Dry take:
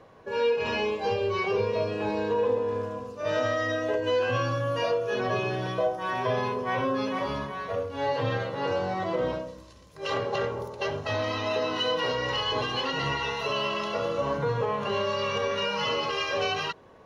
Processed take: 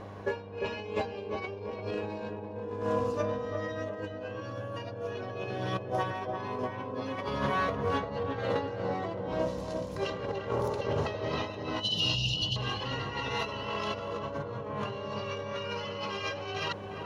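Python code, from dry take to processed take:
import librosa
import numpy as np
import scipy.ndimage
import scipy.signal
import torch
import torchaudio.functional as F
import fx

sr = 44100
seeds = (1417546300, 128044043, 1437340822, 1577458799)

y = fx.spec_erase(x, sr, start_s=11.81, length_s=0.76, low_hz=220.0, high_hz=2700.0)
y = fx.over_compress(y, sr, threshold_db=-34.0, ratio=-0.5)
y = fx.echo_filtered(y, sr, ms=347, feedback_pct=57, hz=1000.0, wet_db=-3.5)
y = fx.dmg_buzz(y, sr, base_hz=100.0, harmonics=9, level_db=-47.0, tilt_db=-5, odd_only=False)
y = fx.doppler_dist(y, sr, depth_ms=0.1)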